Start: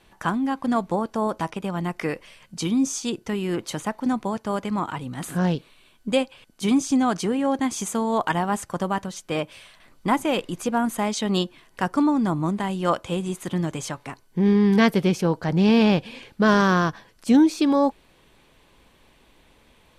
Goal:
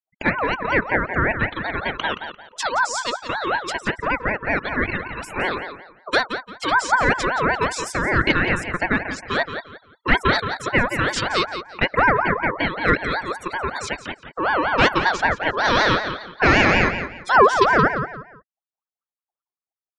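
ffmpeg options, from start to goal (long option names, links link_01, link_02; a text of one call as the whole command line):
ffmpeg -i in.wav -filter_complex "[0:a]afftfilt=real='re*gte(hypot(re,im),0.0178)':imag='im*gte(hypot(re,im),0.0178)':win_size=1024:overlap=0.75,aecho=1:1:3.1:0.52,acrossover=split=360|5700[link_01][link_02][link_03];[link_02]acontrast=82[link_04];[link_03]acrusher=bits=5:mode=log:mix=0:aa=0.000001[link_05];[link_01][link_04][link_05]amix=inputs=3:normalize=0,highpass=240,lowpass=8000,asplit=2[link_06][link_07];[link_07]adelay=173,lowpass=frequency=4000:poles=1,volume=-8.5dB,asplit=2[link_08][link_09];[link_09]adelay=173,lowpass=frequency=4000:poles=1,volume=0.29,asplit=2[link_10][link_11];[link_11]adelay=173,lowpass=frequency=4000:poles=1,volume=0.29[link_12];[link_08][link_10][link_12]amix=inputs=3:normalize=0[link_13];[link_06][link_13]amix=inputs=2:normalize=0,aeval=exprs='val(0)*sin(2*PI*1000*n/s+1000*0.3/5.3*sin(2*PI*5.3*n/s))':channel_layout=same,volume=1dB" out.wav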